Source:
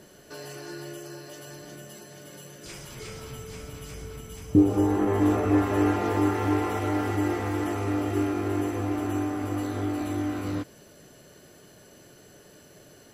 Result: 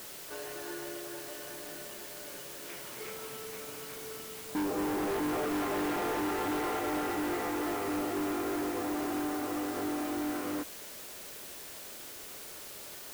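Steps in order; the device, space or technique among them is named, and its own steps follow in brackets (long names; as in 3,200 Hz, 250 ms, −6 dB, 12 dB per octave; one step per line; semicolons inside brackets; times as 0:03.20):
aircraft radio (band-pass filter 330–2,600 Hz; hard clipping −30 dBFS, distortion −6 dB; white noise bed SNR 10 dB)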